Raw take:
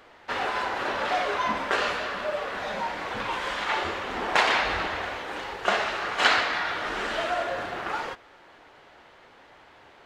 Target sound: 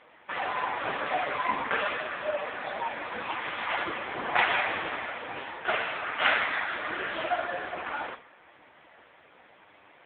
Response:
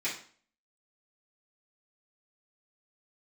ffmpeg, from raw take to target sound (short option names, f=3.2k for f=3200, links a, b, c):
-filter_complex "[0:a]asplit=2[a][b];[1:a]atrim=start_sample=2205,lowshelf=f=250:g=-4.5[c];[b][c]afir=irnorm=-1:irlink=0,volume=-9dB[d];[a][d]amix=inputs=2:normalize=0" -ar 8000 -c:a libopencore_amrnb -b:a 5150